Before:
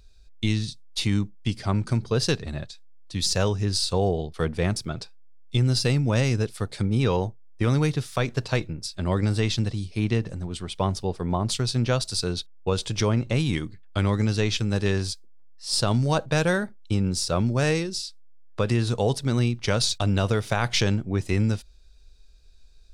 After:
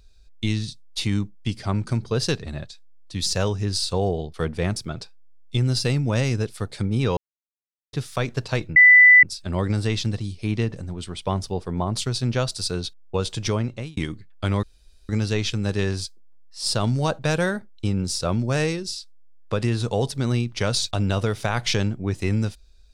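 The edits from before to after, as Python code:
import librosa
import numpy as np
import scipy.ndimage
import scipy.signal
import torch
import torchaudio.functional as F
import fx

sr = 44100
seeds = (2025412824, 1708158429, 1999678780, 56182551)

y = fx.edit(x, sr, fx.silence(start_s=7.17, length_s=0.76),
    fx.insert_tone(at_s=8.76, length_s=0.47, hz=1990.0, db=-7.5),
    fx.fade_out_span(start_s=12.89, length_s=0.61, curve='qsin'),
    fx.insert_room_tone(at_s=14.16, length_s=0.46), tone=tone)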